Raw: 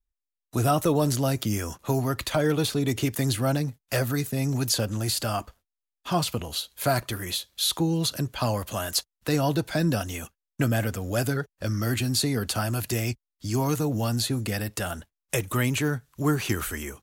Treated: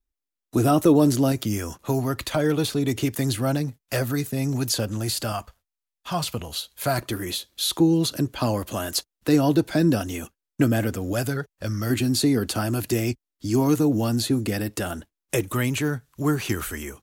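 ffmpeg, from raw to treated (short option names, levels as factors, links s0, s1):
-af "asetnsamples=n=441:p=0,asendcmd='1.32 equalizer g 3;5.32 equalizer g -8.5;6.24 equalizer g -1;6.98 equalizer g 9;11.13 equalizer g 0;11.9 equalizer g 9.5;15.5 equalizer g 2',equalizer=f=310:t=o:w=0.98:g=10"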